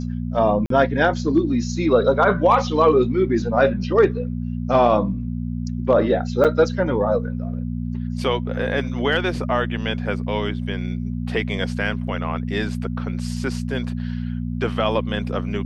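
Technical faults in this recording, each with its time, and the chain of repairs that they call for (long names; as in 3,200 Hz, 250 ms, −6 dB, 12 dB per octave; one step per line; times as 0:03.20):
mains hum 60 Hz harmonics 4 −26 dBFS
0:00.66–0:00.70: drop-out 43 ms
0:06.44–0:06.45: drop-out 7 ms
0:12.07–0:12.08: drop-out 6.5 ms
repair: hum removal 60 Hz, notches 4
repair the gap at 0:00.66, 43 ms
repair the gap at 0:06.44, 7 ms
repair the gap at 0:12.07, 6.5 ms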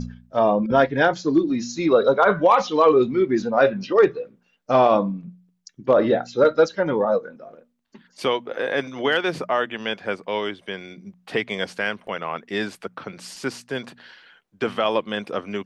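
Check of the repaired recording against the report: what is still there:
none of them is left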